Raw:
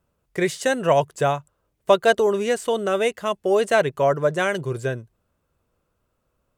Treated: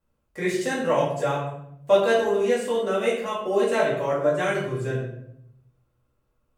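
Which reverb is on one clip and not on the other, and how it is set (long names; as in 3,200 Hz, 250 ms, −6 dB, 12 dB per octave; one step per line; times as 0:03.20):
rectangular room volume 170 cubic metres, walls mixed, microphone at 2.3 metres
level −11 dB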